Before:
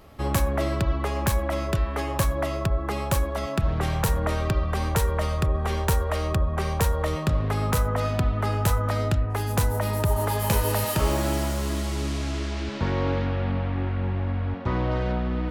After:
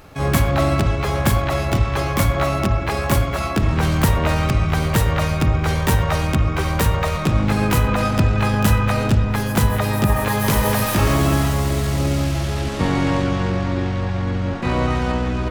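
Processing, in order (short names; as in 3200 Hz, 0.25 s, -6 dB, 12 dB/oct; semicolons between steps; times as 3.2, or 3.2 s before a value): spring tank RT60 1.4 s, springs 50/57 ms, chirp 80 ms, DRR 8.5 dB; harmoniser +4 st -7 dB, +12 st -2 dB; gain +3 dB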